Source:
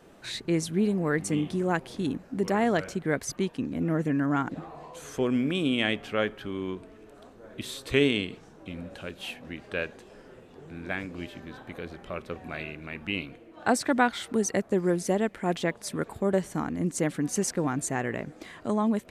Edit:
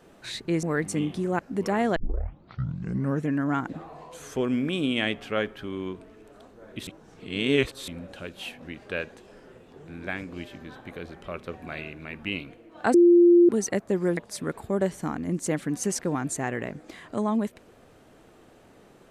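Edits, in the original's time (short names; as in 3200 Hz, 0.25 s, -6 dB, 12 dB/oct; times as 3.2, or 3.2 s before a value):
0.63–0.99 cut
1.75–2.21 cut
2.78 tape start 1.31 s
7.69–8.7 reverse
13.76–14.31 bleep 347 Hz -12 dBFS
14.99–15.69 cut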